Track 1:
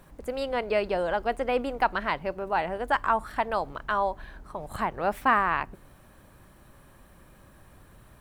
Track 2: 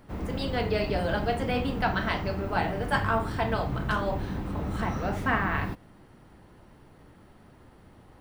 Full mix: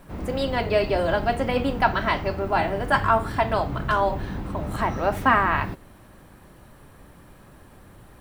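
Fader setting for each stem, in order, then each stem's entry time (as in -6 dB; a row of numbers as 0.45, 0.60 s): +2.5, +1.0 dB; 0.00, 0.00 s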